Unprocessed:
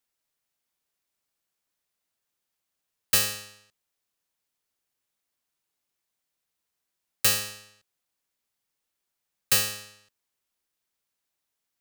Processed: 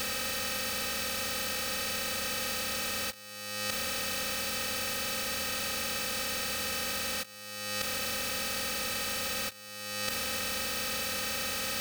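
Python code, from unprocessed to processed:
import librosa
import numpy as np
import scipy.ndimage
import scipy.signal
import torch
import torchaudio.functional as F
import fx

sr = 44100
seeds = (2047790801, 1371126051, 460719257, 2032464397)

y = fx.bin_compress(x, sr, power=0.2)
y = fx.high_shelf(y, sr, hz=5900.0, db=-11.0)
y = y + 0.84 * np.pad(y, (int(3.9 * sr / 1000.0), 0))[:len(y)]
y = fx.over_compress(y, sr, threshold_db=-32.0, ratio=-0.5)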